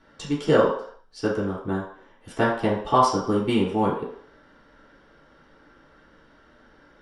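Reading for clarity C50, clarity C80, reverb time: 4.0 dB, 8.0 dB, 0.60 s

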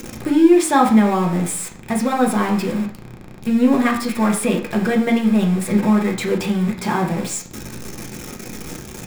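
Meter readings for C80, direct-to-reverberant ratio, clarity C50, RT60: 14.0 dB, 0.0 dB, 10.0 dB, 0.55 s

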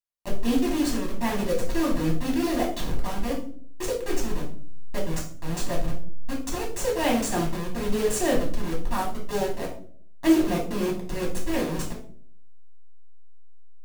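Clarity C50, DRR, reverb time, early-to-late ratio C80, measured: 7.0 dB, −3.5 dB, 0.55 s, 12.0 dB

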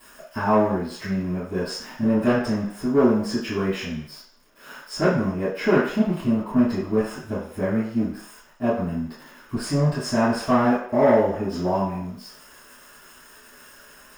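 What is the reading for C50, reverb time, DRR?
3.0 dB, 0.65 s, −14.5 dB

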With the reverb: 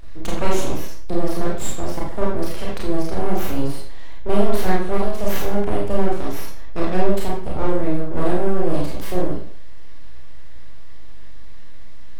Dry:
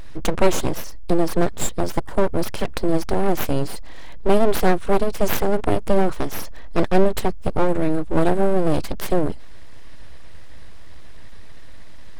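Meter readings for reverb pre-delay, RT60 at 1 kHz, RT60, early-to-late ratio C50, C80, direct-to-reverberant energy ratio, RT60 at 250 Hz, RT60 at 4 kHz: 26 ms, 0.55 s, 0.55 s, 2.0 dB, 6.0 dB, −4.5 dB, 0.50 s, 0.50 s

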